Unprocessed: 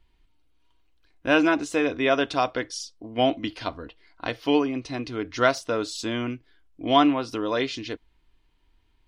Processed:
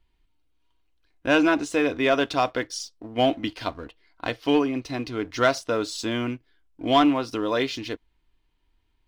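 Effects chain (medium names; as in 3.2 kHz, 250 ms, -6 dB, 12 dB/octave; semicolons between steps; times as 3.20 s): waveshaping leveller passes 1; trim -2.5 dB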